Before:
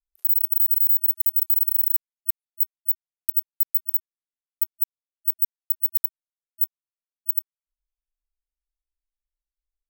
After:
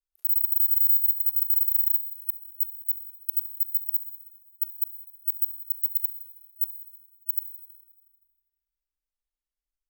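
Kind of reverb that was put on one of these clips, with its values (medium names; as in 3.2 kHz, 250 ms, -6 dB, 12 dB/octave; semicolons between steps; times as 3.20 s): Schroeder reverb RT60 1.5 s, combs from 31 ms, DRR 9 dB; trim -4.5 dB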